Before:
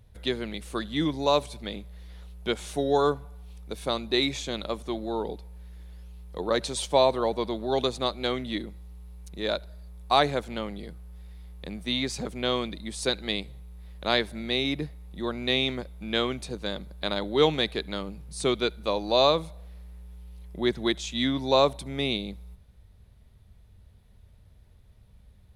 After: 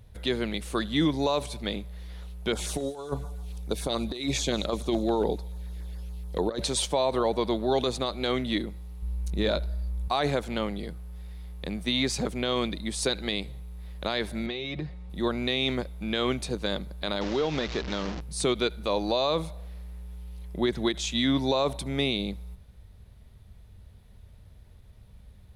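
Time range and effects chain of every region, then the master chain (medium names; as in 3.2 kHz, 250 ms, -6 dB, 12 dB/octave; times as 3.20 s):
2.52–6.64 s: LFO notch saw down 7 Hz 830–3600 Hz + compressor with a negative ratio -30 dBFS, ratio -0.5 + feedback echo behind a high-pass 192 ms, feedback 58%, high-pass 3.3 kHz, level -18.5 dB
9.02–10.08 s: bass shelf 280 Hz +9 dB + doubling 20 ms -11 dB
14.46–15.10 s: comb 5.5 ms, depth 53% + compression 12:1, threshold -32 dBFS + distance through air 99 m
17.21–18.21 s: one-bit delta coder 32 kbps, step -32.5 dBFS + compression 4:1, threshold -28 dBFS
whole clip: peak limiter -19 dBFS; endings held to a fixed fall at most 430 dB/s; trim +4 dB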